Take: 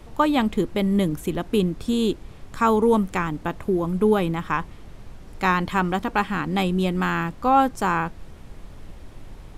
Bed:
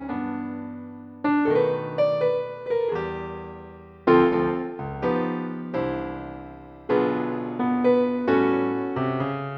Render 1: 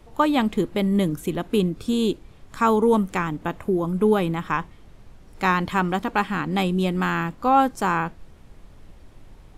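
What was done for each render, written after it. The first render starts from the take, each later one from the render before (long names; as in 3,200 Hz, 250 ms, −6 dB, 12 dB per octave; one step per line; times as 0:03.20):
noise reduction from a noise print 6 dB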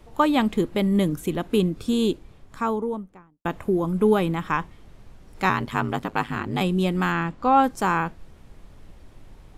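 0:02.02–0:03.45: fade out and dull
0:05.49–0:06.61: ring modulation 53 Hz
0:07.12–0:07.64: high-frequency loss of the air 57 metres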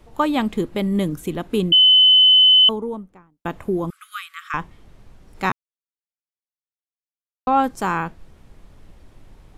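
0:01.72–0:02.69: beep over 3,030 Hz −8.5 dBFS
0:03.90–0:04.54: linear-phase brick-wall high-pass 1,100 Hz
0:05.52–0:07.47: silence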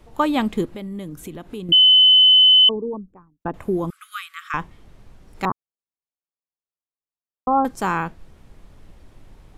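0:00.65–0:01.69: downward compressor 2.5 to 1, threshold −34 dBFS
0:02.67–0:03.54: spectral envelope exaggerated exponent 2
0:05.45–0:07.65: Chebyshev low-pass filter 1,200 Hz, order 4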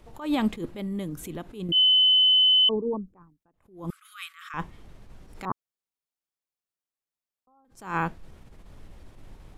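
brickwall limiter −15.5 dBFS, peak gain reduction 9 dB
level that may rise only so fast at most 140 dB per second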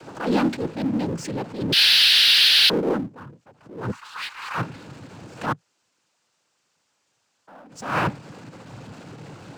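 cochlear-implant simulation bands 8
power curve on the samples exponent 0.7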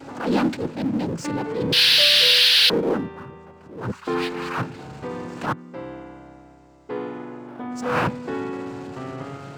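mix in bed −8.5 dB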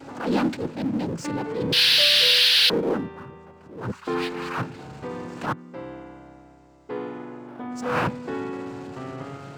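level −2 dB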